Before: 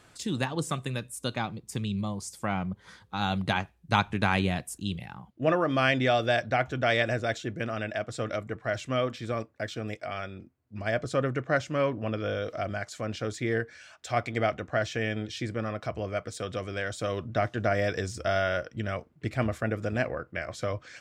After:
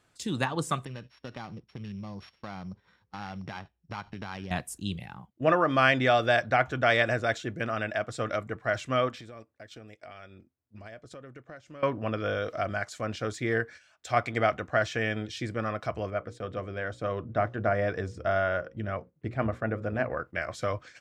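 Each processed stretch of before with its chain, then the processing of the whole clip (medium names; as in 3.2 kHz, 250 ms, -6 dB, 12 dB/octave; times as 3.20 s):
0.85–4.51 s: sorted samples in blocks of 8 samples + Chebyshev low-pass 2.9 kHz + compression 4:1, threshold -35 dBFS
9.09–11.83 s: compression 20:1, threshold -39 dBFS + peaking EQ 150 Hz -3 dB 0.9 oct
16.10–20.11 s: low-pass 1.2 kHz 6 dB/octave + hum notches 60/120/180/240/300/360/420/480/540 Hz
whole clip: gate -45 dBFS, range -10 dB; dynamic bell 1.2 kHz, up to +6 dB, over -41 dBFS, Q 0.9; trim -1 dB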